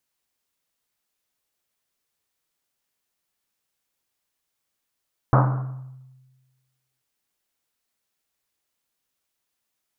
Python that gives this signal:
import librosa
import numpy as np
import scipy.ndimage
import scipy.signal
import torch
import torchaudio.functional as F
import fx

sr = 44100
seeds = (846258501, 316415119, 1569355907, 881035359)

y = fx.risset_drum(sr, seeds[0], length_s=1.69, hz=130.0, decay_s=1.4, noise_hz=900.0, noise_width_hz=860.0, noise_pct=30)